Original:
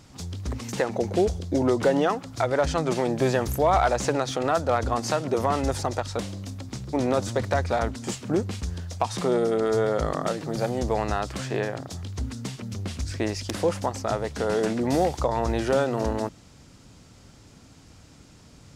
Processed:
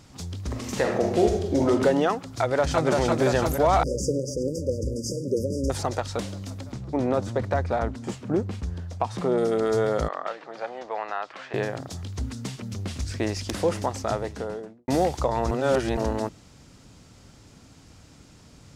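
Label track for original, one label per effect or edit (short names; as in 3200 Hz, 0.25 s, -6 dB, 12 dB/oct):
0.460000	1.700000	reverb throw, RT60 0.87 s, DRR 1.5 dB
2.200000	2.860000	echo throw 0.34 s, feedback 75%, level -2 dB
3.830000	5.700000	brick-wall FIR band-stop 580–4700 Hz
6.720000	9.380000	high shelf 2600 Hz -11.5 dB
10.080000	11.540000	BPF 730–2500 Hz
12.430000	13.340000	echo throw 0.51 s, feedback 60%, level -12.5 dB
14.060000	14.880000	studio fade out
15.510000	15.970000	reverse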